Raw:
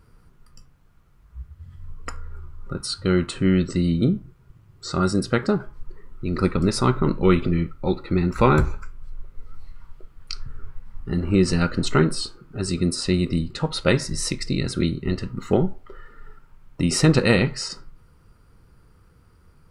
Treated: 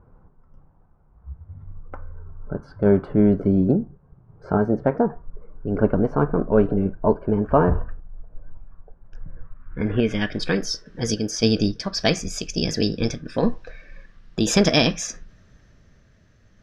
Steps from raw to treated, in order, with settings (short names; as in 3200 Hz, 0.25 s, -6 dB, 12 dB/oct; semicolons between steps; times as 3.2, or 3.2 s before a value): speed glide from 106% -> 131%; low-pass sweep 840 Hz -> 5200 Hz, 9.27–10.59; random-step tremolo; gain +2.5 dB